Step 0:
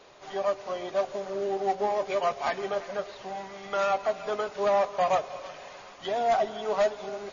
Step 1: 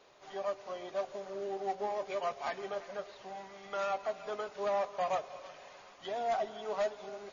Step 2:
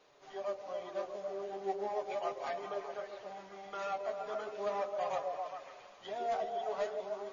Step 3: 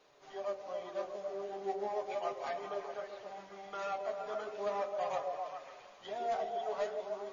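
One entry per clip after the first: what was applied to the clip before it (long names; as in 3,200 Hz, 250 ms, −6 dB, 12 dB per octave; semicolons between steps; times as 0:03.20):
low-shelf EQ 180 Hz −3.5 dB; level −8 dB
echo through a band-pass that steps 135 ms, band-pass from 360 Hz, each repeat 0.7 octaves, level −0.5 dB; flanger 0.37 Hz, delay 6.4 ms, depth 5.8 ms, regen −35%
hum removal 95.4 Hz, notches 38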